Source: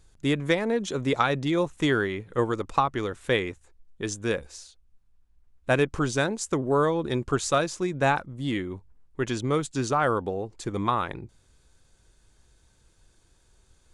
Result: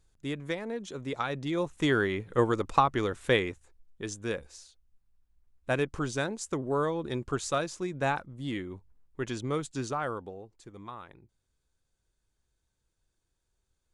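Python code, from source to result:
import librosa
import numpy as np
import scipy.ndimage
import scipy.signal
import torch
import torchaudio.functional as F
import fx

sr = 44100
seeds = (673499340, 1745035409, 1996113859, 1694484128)

y = fx.gain(x, sr, db=fx.line((1.12, -10.0), (2.14, 0.0), (3.26, 0.0), (4.05, -6.0), (9.78, -6.0), (10.73, -18.0)))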